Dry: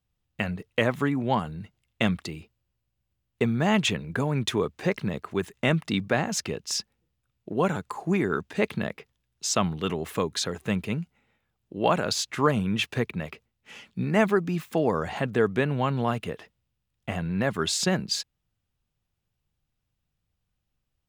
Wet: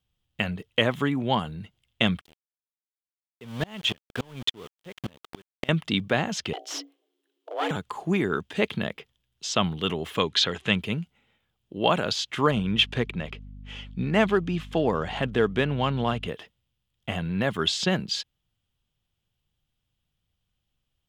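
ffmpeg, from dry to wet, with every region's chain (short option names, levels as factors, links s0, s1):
-filter_complex "[0:a]asettb=1/sr,asplit=3[s0][s1][s2];[s0]atrim=end=2.214[s3];[s1]atrim=start=2.21:end=5.69,asetpts=PTS-STARTPTS,afade=t=in:d=0.004:c=qsin,afade=t=out:st=3.476:d=0.004:c=qsin,aeval=exprs='val(0)*gte(abs(val(0)),0.0376)':c=same,aeval=exprs='val(0)*pow(10,-30*if(lt(mod(-3.5*n/s,1),2*abs(-3.5)/1000),1-mod(-3.5*n/s,1)/(2*abs(-3.5)/1000),(mod(-3.5*n/s,1)-2*abs(-3.5)/1000)/(1-2*abs(-3.5)/1000))/20)':c=same[s4];[s2]atrim=start=5.686[s5];[s3][s4]acrossfade=d=0.004:c1=hsin:c2=qsin[s6];[s6][s5]acrossfade=d=0.004:c1=qsin:c2=hsin,asettb=1/sr,asplit=3[s7][s8][s9];[s7]atrim=end=6.534[s10];[s8]atrim=start=6.53:end=7.71,asetpts=PTS-STARTPTS,afade=t=in:d=0.004:c=qsin,afade=t=out:st=1.176:d=0.004:c=qsin,bandreject=f=60:t=h:w=6,bandreject=f=120:t=h:w=6,bandreject=f=180:t=h:w=6,bandreject=f=240:t=h:w=6,bandreject=f=300:t=h:w=6,bandreject=f=360:t=h:w=6,bandreject=f=420:t=h:w=6,bandreject=f=480:t=h:w=6,aeval=exprs='clip(val(0),-1,0.0237)':c=same,afreqshift=280[s11];[s9]atrim=start=7.706[s12];[s10][s11]acrossfade=d=0.004:c1=hsin:c2=qsin[s13];[s13][s12]acrossfade=d=0.004:c1=qsin:c2=hsin,asettb=1/sr,asplit=3[s14][s15][s16];[s14]atrim=end=10.184[s17];[s15]atrim=start=10.18:end=10.76,asetpts=PTS-STARTPTS,afade=t=in:d=0.004:c=qsin,afade=t=out:st=0.576:d=0.004:c=qsin,lowpass=8300,equalizer=f=2700:t=o:w=2.4:g=7.5[s18];[s16]atrim=start=10.756[s19];[s17][s18]acrossfade=d=0.004:c1=hsin:c2=qsin[s20];[s20][s19]acrossfade=d=0.004:c1=qsin:c2=hsin,asettb=1/sr,asplit=3[s21][s22][s23];[s21]atrim=end=12.514[s24];[s22]atrim=start=12.51:end=16.28,asetpts=PTS-STARTPTS,afade=t=in:d=0.004:c=qsin,afade=t=out:st=3.766:d=0.004:c=qsin,highshelf=f=8800:g=5,adynamicsmooth=sensitivity=5.5:basefreq=5300,aeval=exprs='val(0)+0.00891*(sin(2*PI*50*n/s)+sin(2*PI*2*50*n/s)/2+sin(2*PI*3*50*n/s)/3+sin(2*PI*4*50*n/s)/4+sin(2*PI*5*50*n/s)/5)':c=same[s25];[s23]atrim=start=16.276[s26];[s24][s25]acrossfade=d=0.004:c1=hsin:c2=qsin[s27];[s27][s26]acrossfade=d=0.004:c1=qsin:c2=hsin,acrossover=split=5900[s28][s29];[s29]acompressor=threshold=0.00398:ratio=4:attack=1:release=60[s30];[s28][s30]amix=inputs=2:normalize=0,equalizer=f=3200:t=o:w=0.39:g=10.5"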